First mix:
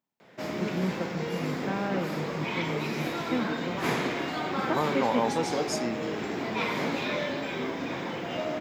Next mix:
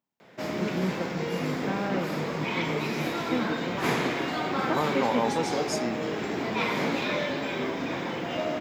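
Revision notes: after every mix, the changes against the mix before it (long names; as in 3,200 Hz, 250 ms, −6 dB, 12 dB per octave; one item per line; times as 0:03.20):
background: send on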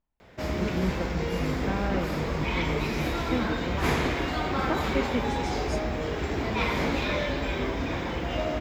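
second voice −10.0 dB
master: remove high-pass filter 140 Hz 24 dB per octave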